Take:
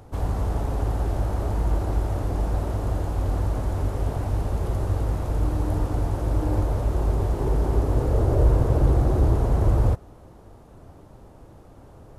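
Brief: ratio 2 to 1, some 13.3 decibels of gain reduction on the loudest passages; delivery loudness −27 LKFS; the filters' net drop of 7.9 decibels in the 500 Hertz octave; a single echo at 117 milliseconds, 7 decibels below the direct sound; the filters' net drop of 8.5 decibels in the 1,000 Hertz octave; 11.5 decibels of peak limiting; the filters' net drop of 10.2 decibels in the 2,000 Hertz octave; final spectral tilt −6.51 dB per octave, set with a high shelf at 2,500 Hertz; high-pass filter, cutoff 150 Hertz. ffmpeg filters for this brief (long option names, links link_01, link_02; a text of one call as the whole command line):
ffmpeg -i in.wav -af "highpass=150,equalizer=frequency=500:width_type=o:gain=-8.5,equalizer=frequency=1000:width_type=o:gain=-5,equalizer=frequency=2000:width_type=o:gain=-7.5,highshelf=frequency=2500:gain=-8.5,acompressor=threshold=-50dB:ratio=2,alimiter=level_in=18dB:limit=-24dB:level=0:latency=1,volume=-18dB,aecho=1:1:117:0.447,volume=23dB" out.wav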